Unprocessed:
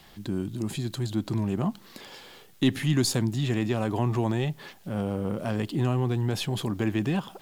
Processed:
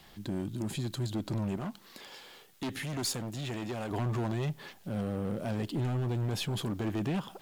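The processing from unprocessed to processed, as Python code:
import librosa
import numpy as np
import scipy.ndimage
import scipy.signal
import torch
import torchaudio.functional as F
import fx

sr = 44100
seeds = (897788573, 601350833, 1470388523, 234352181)

y = np.clip(x, -10.0 ** (-25.0 / 20.0), 10.0 ** (-25.0 / 20.0))
y = fx.low_shelf(y, sr, hz=320.0, db=-7.5, at=(1.57, 3.91))
y = y * 10.0 ** (-3.0 / 20.0)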